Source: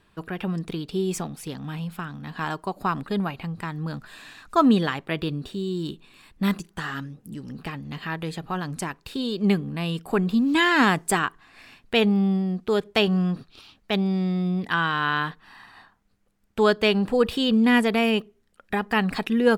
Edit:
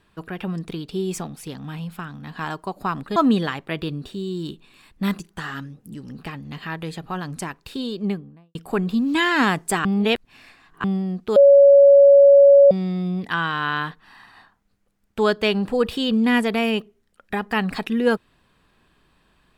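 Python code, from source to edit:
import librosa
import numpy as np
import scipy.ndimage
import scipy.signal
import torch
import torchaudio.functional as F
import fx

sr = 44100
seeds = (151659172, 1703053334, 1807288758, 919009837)

y = fx.studio_fade_out(x, sr, start_s=9.17, length_s=0.78)
y = fx.edit(y, sr, fx.cut(start_s=3.16, length_s=1.4),
    fx.reverse_span(start_s=11.25, length_s=0.99),
    fx.bleep(start_s=12.76, length_s=1.35, hz=561.0, db=-7.0), tone=tone)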